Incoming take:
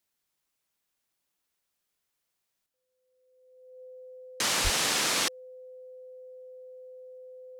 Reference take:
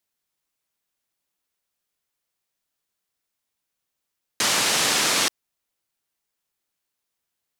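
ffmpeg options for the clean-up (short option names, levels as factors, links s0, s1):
-filter_complex "[0:a]bandreject=f=510:w=30,asplit=3[s0][s1][s2];[s0]afade=t=out:st=4.63:d=0.02[s3];[s1]highpass=f=140:w=0.5412,highpass=f=140:w=1.3066,afade=t=in:st=4.63:d=0.02,afade=t=out:st=4.75:d=0.02[s4];[s2]afade=t=in:st=4.75:d=0.02[s5];[s3][s4][s5]amix=inputs=3:normalize=0,asetnsamples=n=441:p=0,asendcmd='2.66 volume volume 6dB',volume=1"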